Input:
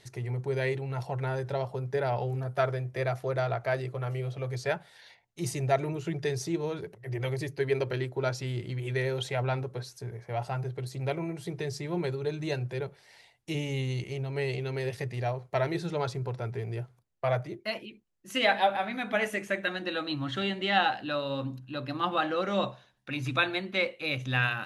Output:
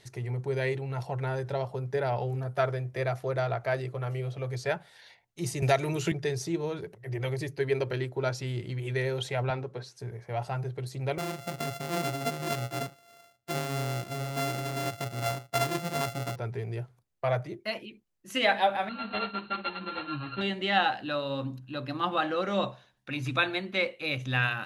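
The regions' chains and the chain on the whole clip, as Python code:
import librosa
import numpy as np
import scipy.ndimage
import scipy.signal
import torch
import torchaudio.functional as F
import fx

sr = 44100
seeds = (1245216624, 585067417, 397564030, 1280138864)

y = fx.chain(x, sr, fx.high_shelf(hz=2200.0, db=11.5),
    fx.band_squash(depth_pct=70), at=(5.62, 6.12))
y = fx.chain(y, sr, fx.highpass(hz=140.0, slope=12),
    fx.air_absorb(metres=57.0), at=(9.5, 9.99))
y = fx.chain(y, sr, fx.sample_sort(block=64),
    fx.highpass(hz=92.0, slope=12), at=(11.18, 16.36))
y = fx.chain(y, sr, fx.sample_sort(block=32),
    fx.brickwall_lowpass(high_hz=4400.0),
    fx.ensemble(), at=(18.89, 20.41))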